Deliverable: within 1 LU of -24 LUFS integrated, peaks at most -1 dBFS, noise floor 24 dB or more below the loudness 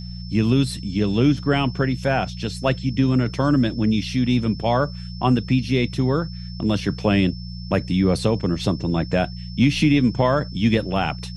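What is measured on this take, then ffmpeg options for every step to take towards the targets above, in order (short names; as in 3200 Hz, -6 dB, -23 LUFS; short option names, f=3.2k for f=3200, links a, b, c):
hum 60 Hz; harmonics up to 180 Hz; hum level -31 dBFS; steady tone 5300 Hz; tone level -41 dBFS; loudness -21.0 LUFS; peak -6.5 dBFS; loudness target -24.0 LUFS
-> -af "bandreject=f=60:t=h:w=4,bandreject=f=120:t=h:w=4,bandreject=f=180:t=h:w=4"
-af "bandreject=f=5.3k:w=30"
-af "volume=-3dB"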